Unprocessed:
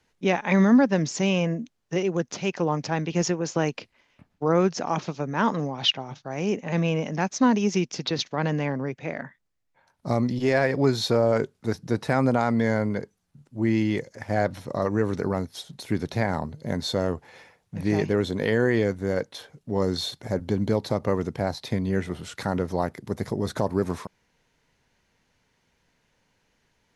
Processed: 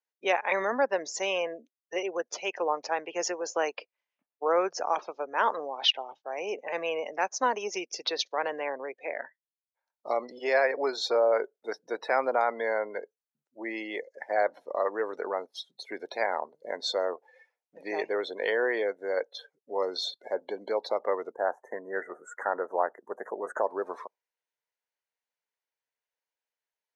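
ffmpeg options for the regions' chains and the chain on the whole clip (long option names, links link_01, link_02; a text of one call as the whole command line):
ffmpeg -i in.wav -filter_complex "[0:a]asettb=1/sr,asplit=3[link_01][link_02][link_03];[link_01]atrim=end=21.324[link_04];[link_02]atrim=start=21.32:end=23.62,asetpts=PTS-STARTPTS,afade=type=in:duration=0.004:curve=qsin,afade=type=out:start_time=2.296:duration=0.004:curve=qsin,adynamicequalizer=threshold=0.00708:dfrequency=1800:dqfactor=0.78:tfrequency=1800:tqfactor=0.78:attack=5:release=100:ratio=0.375:range=2:mode=boostabove:tftype=bell,asuperstop=centerf=3500:order=12:qfactor=0.78[link_05];[link_03]atrim=start=23.616[link_06];[link_04][link_05]acrossfade=duration=0.004:curve1=hsin:curve2=qsin[link_07];[link_07][link_06]acrossfade=duration=0.004:curve1=qsin:curve2=hsin,afftdn=noise_reduction=24:noise_floor=-40,highpass=frequency=470:width=0.5412,highpass=frequency=470:width=1.3066,adynamicequalizer=threshold=0.0112:dfrequency=1800:dqfactor=0.7:tfrequency=1800:tqfactor=0.7:attack=5:release=100:ratio=0.375:range=2.5:mode=cutabove:tftype=highshelf" out.wav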